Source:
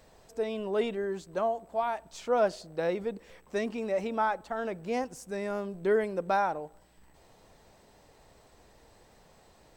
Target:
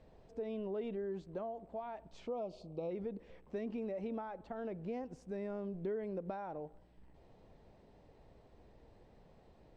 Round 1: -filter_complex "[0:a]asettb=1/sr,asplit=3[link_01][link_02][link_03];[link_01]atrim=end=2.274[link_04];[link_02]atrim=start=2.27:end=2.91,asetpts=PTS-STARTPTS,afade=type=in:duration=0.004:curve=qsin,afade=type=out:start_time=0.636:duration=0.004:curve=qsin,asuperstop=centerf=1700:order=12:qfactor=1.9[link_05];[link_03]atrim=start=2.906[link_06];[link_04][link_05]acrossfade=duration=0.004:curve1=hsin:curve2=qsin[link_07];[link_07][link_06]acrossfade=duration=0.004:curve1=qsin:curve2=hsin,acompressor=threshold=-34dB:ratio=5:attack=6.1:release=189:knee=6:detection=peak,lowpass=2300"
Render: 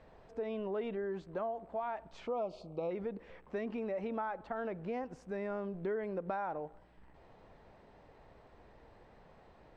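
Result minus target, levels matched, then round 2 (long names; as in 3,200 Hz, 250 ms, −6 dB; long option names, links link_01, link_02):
1,000 Hz band +3.5 dB
-filter_complex "[0:a]asettb=1/sr,asplit=3[link_01][link_02][link_03];[link_01]atrim=end=2.274[link_04];[link_02]atrim=start=2.27:end=2.91,asetpts=PTS-STARTPTS,afade=type=in:duration=0.004:curve=qsin,afade=type=out:start_time=0.636:duration=0.004:curve=qsin,asuperstop=centerf=1700:order=12:qfactor=1.9[link_05];[link_03]atrim=start=2.906[link_06];[link_04][link_05]acrossfade=duration=0.004:curve1=hsin:curve2=qsin[link_07];[link_07][link_06]acrossfade=duration=0.004:curve1=qsin:curve2=hsin,acompressor=threshold=-34dB:ratio=5:attack=6.1:release=189:knee=6:detection=peak,lowpass=2300,equalizer=frequency=1400:width=0.65:gain=-10.5"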